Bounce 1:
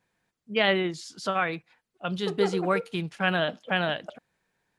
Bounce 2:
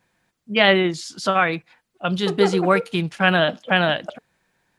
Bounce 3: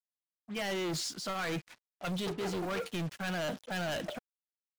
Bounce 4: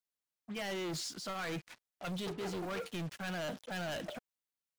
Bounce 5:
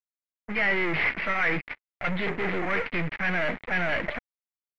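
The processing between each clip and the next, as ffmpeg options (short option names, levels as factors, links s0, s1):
-af "bandreject=f=440:w=12,volume=2.51"
-af "areverse,acompressor=threshold=0.0562:ratio=20,areverse,asoftclip=type=hard:threshold=0.0251,acrusher=bits=7:mix=0:aa=0.5"
-af "alimiter=level_in=4.73:limit=0.0631:level=0:latency=1:release=88,volume=0.211,volume=1.12"
-af "acrusher=samples=6:mix=1:aa=0.000001,aeval=exprs='0.015*(cos(1*acos(clip(val(0)/0.015,-1,1)))-cos(1*PI/2))+0.00376*(cos(2*acos(clip(val(0)/0.015,-1,1)))-cos(2*PI/2))+0.00237*(cos(6*acos(clip(val(0)/0.015,-1,1)))-cos(6*PI/2))+0.00211*(cos(7*acos(clip(val(0)/0.015,-1,1)))-cos(7*PI/2))':c=same,lowpass=f=2100:t=q:w=5.2,volume=2.37"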